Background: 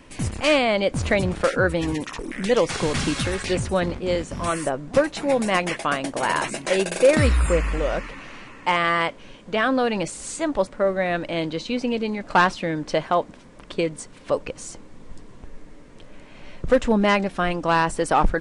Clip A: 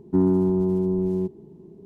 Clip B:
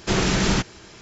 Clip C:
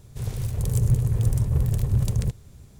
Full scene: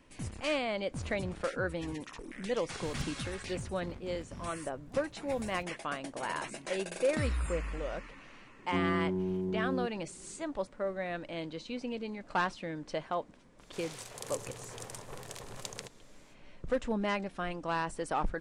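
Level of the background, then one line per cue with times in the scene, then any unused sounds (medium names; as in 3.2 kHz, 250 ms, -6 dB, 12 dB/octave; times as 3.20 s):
background -13.5 dB
2.84 s: add C -1.5 dB + inverted gate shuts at -23 dBFS, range -34 dB
8.59 s: add A -11 dB + hard clipper -16.5 dBFS
13.57 s: add C, fades 0.05 s + band-pass 690–7500 Hz
not used: B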